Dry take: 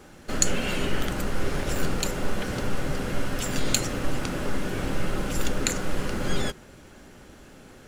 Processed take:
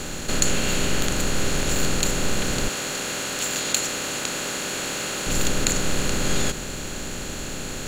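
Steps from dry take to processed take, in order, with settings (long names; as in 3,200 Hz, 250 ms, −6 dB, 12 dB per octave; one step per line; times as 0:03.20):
compressor on every frequency bin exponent 0.4
0:02.68–0:05.27: high-pass filter 540 Hz 6 dB per octave
level −1.5 dB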